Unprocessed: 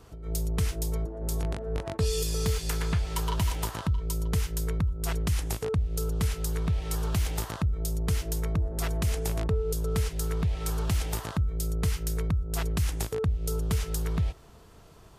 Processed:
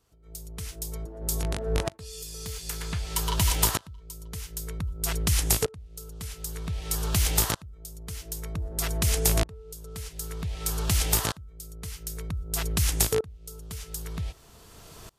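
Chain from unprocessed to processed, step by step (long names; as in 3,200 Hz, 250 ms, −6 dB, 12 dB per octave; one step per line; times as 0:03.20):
high-shelf EQ 2,700 Hz +10.5 dB
tremolo with a ramp in dB swelling 0.53 Hz, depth 26 dB
level +6.5 dB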